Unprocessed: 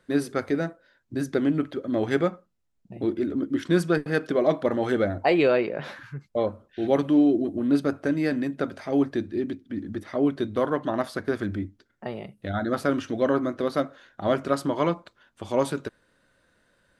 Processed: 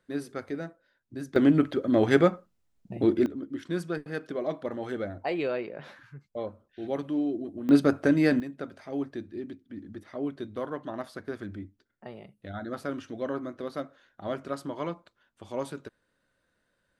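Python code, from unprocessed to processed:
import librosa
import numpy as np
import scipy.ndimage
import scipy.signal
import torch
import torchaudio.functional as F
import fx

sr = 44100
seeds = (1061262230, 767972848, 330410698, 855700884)

y = fx.gain(x, sr, db=fx.steps((0.0, -9.0), (1.36, 3.0), (3.26, -9.5), (7.69, 2.5), (8.4, -9.5)))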